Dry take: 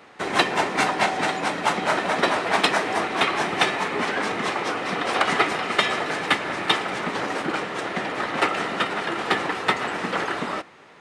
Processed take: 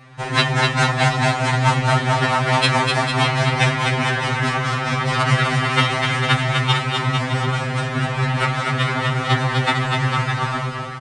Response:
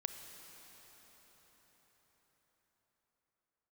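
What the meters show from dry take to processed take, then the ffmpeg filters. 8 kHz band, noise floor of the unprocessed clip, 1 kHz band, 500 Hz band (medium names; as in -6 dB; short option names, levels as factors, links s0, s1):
+4.0 dB, -48 dBFS, +3.0 dB, +1.5 dB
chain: -af "lowshelf=f=220:t=q:w=3:g=11.5,tremolo=f=48:d=0.919,aresample=22050,aresample=44100,aecho=1:1:250|450|610|738|840.4:0.631|0.398|0.251|0.158|0.1,afftfilt=real='re*2.45*eq(mod(b,6),0)':imag='im*2.45*eq(mod(b,6),0)':win_size=2048:overlap=0.75,volume=2.51"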